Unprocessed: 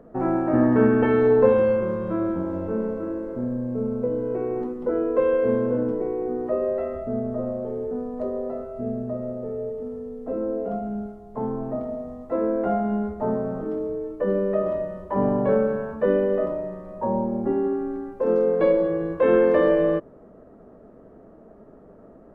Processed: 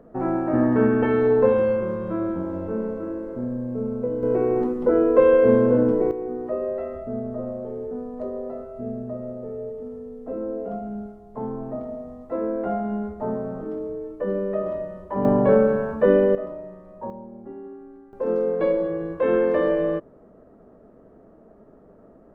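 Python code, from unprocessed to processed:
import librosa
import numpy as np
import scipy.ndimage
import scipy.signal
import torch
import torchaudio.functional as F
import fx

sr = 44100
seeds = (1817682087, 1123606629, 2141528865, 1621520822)

y = fx.gain(x, sr, db=fx.steps((0.0, -1.0), (4.23, 5.5), (6.11, -2.5), (15.25, 4.0), (16.35, -7.0), (17.1, -15.0), (18.13, -2.5)))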